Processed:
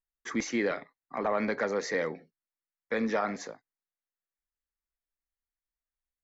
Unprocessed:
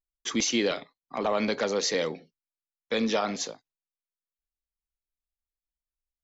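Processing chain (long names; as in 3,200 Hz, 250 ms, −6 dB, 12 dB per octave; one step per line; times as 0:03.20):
high shelf with overshoot 2,400 Hz −7.5 dB, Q 3
level −3 dB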